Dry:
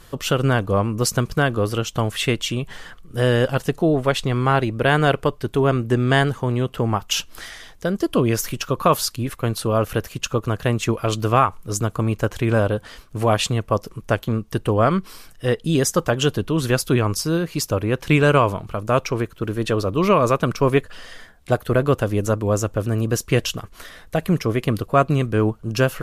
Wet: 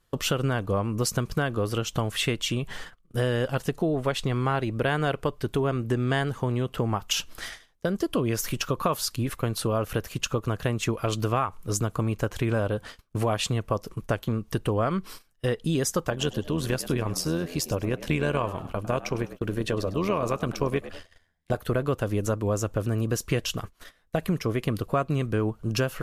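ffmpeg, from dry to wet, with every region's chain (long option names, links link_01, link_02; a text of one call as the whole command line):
ffmpeg -i in.wav -filter_complex "[0:a]asettb=1/sr,asplit=3[link_01][link_02][link_03];[link_01]atrim=end=16.104[link_04];[link_02]atrim=start=16.1:end=21.56,asetpts=PTS-STARTPTS,afade=type=in:duration=0.004:curve=qsin,afade=type=out:start_time=5.456:duration=0.004:curve=qsin,bandreject=frequency=1300:width=8.7,tremolo=f=85:d=0.621,asplit=4[link_05][link_06][link_07][link_08];[link_06]adelay=102,afreqshift=78,volume=-17dB[link_09];[link_07]adelay=204,afreqshift=156,volume=-25.9dB[link_10];[link_08]adelay=306,afreqshift=234,volume=-34.7dB[link_11];[link_05][link_09][link_10][link_11]amix=inputs=4:normalize=0,atrim=end_sample=240786[link_12];[link_03]atrim=start=21.556[link_13];[link_04][link_12]acrossfade=duration=0.004:curve1=hsin:curve2=qsin[link_14];[link_14][link_13]acrossfade=duration=0.004:curve1=qsin:curve2=hsin,agate=range=-23dB:threshold=-36dB:ratio=16:detection=peak,acompressor=threshold=-24dB:ratio=3" out.wav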